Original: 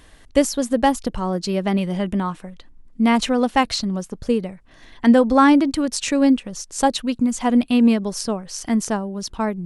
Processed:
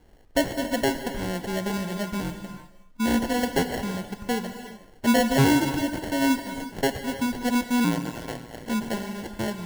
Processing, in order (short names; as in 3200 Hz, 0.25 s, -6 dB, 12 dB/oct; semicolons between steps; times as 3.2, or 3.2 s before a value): sample-and-hold 36×; non-linear reverb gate 0.4 s flat, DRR 7.5 dB; 7.84–8.66 ring modulator 57 Hz; gain -7 dB